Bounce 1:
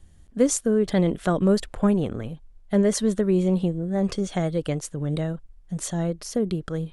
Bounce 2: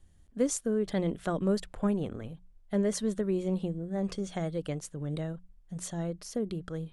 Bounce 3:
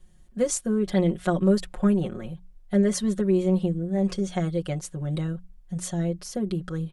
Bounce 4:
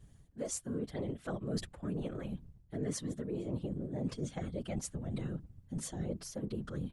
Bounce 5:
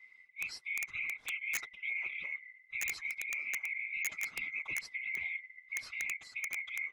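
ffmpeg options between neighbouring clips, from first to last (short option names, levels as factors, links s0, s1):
-af "bandreject=f=60:t=h:w=6,bandreject=f=120:t=h:w=6,bandreject=f=180:t=h:w=6,volume=0.398"
-af "aecho=1:1:5.5:0.88,volume=1.41"
-af "areverse,acompressor=threshold=0.0251:ratio=6,areverse,afftfilt=real='hypot(re,im)*cos(2*PI*random(0))':imag='hypot(re,im)*sin(2*PI*random(1))':win_size=512:overlap=0.75,volume=1.33"
-af "afftfilt=real='real(if(lt(b,920),b+92*(1-2*mod(floor(b/92),2)),b),0)':imag='imag(if(lt(b,920),b+92*(1-2*mod(floor(b/92),2)),b),0)':win_size=2048:overlap=0.75,lowpass=4000,aeval=exprs='(mod(25.1*val(0)+1,2)-1)/25.1':c=same"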